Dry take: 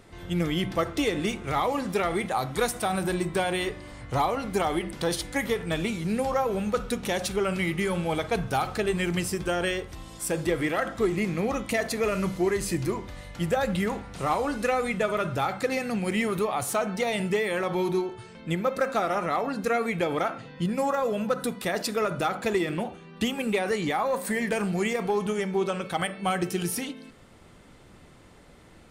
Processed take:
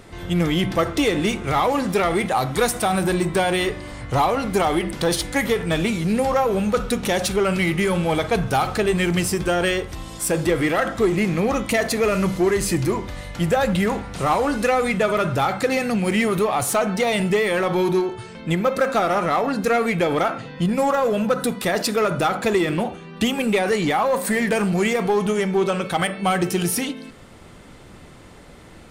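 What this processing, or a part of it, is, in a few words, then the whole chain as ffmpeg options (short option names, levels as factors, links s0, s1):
parallel distortion: -filter_complex "[0:a]asplit=2[s0][s1];[s1]asoftclip=type=hard:threshold=0.0376,volume=0.631[s2];[s0][s2]amix=inputs=2:normalize=0,volume=1.58"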